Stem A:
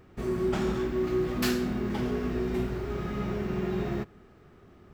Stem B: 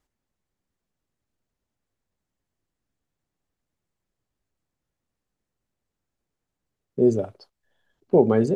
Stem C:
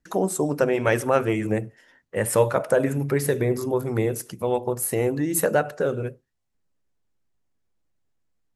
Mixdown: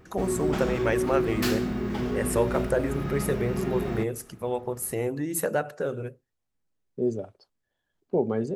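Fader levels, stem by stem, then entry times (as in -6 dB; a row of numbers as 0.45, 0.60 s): +1.0, -8.0, -5.5 dB; 0.00, 0.00, 0.00 s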